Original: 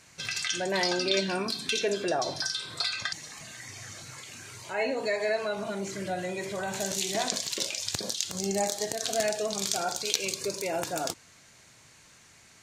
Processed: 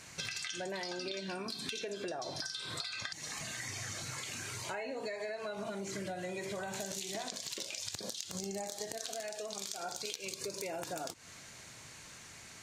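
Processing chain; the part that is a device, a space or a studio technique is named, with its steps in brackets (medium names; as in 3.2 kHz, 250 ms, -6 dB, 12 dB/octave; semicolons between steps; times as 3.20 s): serial compression, peaks first (compression, threshold -36 dBFS, peak gain reduction 14.5 dB; compression 3:1, threshold -42 dBFS, peak gain reduction 8 dB); 8.98–9.83 s: bass shelf 230 Hz -10.5 dB; trim +4 dB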